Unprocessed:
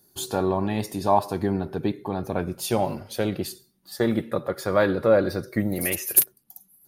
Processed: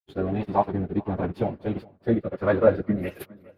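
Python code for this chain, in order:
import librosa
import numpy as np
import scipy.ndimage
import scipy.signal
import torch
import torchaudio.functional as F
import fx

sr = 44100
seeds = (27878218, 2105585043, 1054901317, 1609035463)

p1 = np.sign(x) * np.maximum(np.abs(x) - 10.0 ** (-37.0 / 20.0), 0.0)
p2 = fx.rotary(p1, sr, hz=0.75)
p3 = fx.stretch_vocoder_free(p2, sr, factor=0.52)
p4 = fx.air_absorb(p3, sr, metres=460.0)
p5 = p4 + fx.echo_feedback(p4, sr, ms=410, feedback_pct=31, wet_db=-23.5, dry=0)
y = p5 * librosa.db_to_amplitude(7.0)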